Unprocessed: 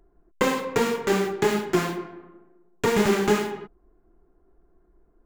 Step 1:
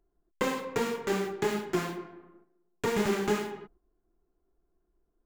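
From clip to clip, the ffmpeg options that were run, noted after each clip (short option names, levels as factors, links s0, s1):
-af "agate=range=0.447:threshold=0.00282:ratio=16:detection=peak,volume=0.447"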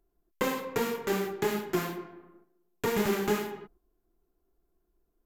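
-af "equalizer=f=13000:t=o:w=0.21:g=15"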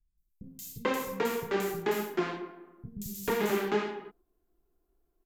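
-filter_complex "[0:a]acrossover=split=170|5100[s0][s1][s2];[s2]adelay=180[s3];[s1]adelay=440[s4];[s0][s4][s3]amix=inputs=3:normalize=0"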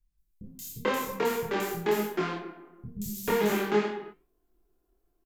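-filter_complex "[0:a]flanger=delay=6.4:depth=3.4:regen=-85:speed=0.88:shape=sinusoidal,asplit=2[s0][s1];[s1]adelay=24,volume=0.75[s2];[s0][s2]amix=inputs=2:normalize=0,volume=1.78"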